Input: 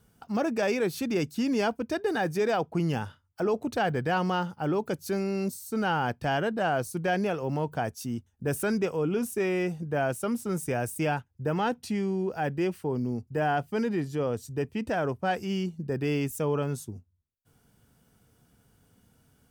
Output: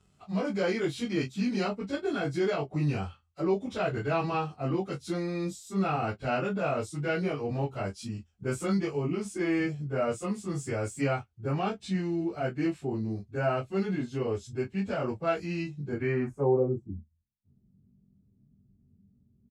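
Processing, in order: frequency-domain pitch shifter -2 st; resonant high shelf 5.6 kHz +11.5 dB, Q 1.5; early reflections 21 ms -5 dB, 36 ms -15.5 dB; low-pass sweep 3.5 kHz -> 220 Hz, 15.86–16.97 s; trim -1.5 dB

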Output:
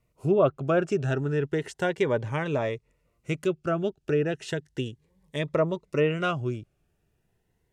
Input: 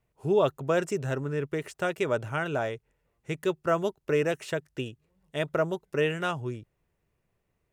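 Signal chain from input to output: low-pass that closes with the level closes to 1.9 kHz, closed at -20.5 dBFS; 3.35–5.48 s: dynamic bell 930 Hz, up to -7 dB, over -42 dBFS, Q 0.7; Shepard-style phaser rising 0.34 Hz; trim +4.5 dB

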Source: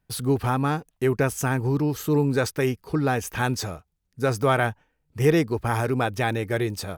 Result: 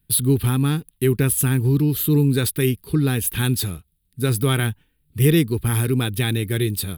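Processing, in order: FFT filter 170 Hz 0 dB, 400 Hz -5 dB, 610 Hz -20 dB, 2.3 kHz -5 dB, 3.7 kHz +4 dB, 6.1 kHz -13 dB, 10 kHz +9 dB; trim +7 dB

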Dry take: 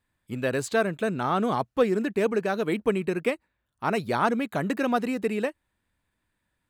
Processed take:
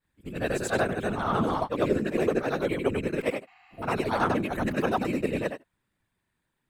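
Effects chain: short-time spectra conjugated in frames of 202 ms; whisper effect; spectral replace 3.50–3.80 s, 700–7500 Hz before; trim +2 dB

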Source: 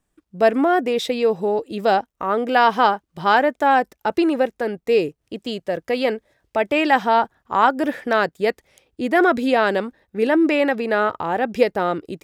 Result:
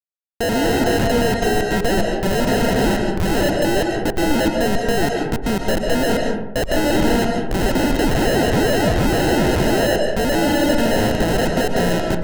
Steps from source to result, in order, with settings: painted sound fall, 7.99–9.96 s, 2.8–7.5 kHz -17 dBFS; Schmitt trigger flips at -26.5 dBFS; sample-and-hold 38×; on a send: reverberation RT60 0.95 s, pre-delay 95 ms, DRR 1.5 dB

